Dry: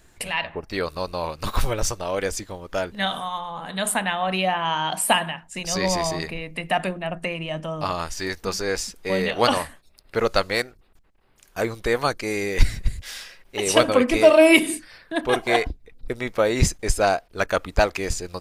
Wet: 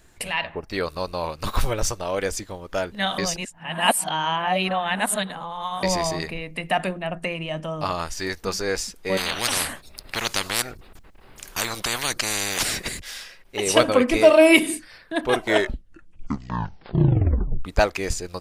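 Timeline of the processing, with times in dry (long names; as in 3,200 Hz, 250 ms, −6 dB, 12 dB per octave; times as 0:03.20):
0:03.18–0:05.83: reverse
0:09.17–0:13.00: every bin compressed towards the loudest bin 10 to 1
0:15.33: tape stop 2.32 s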